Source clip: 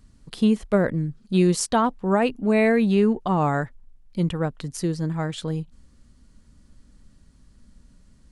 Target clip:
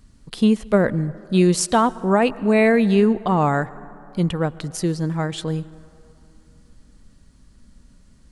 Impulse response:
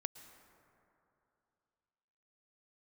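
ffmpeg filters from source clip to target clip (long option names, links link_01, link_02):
-filter_complex "[0:a]asplit=2[link_01][link_02];[1:a]atrim=start_sample=2205,lowshelf=frequency=230:gain=-6[link_03];[link_02][link_03]afir=irnorm=-1:irlink=0,volume=-2.5dB[link_04];[link_01][link_04]amix=inputs=2:normalize=0"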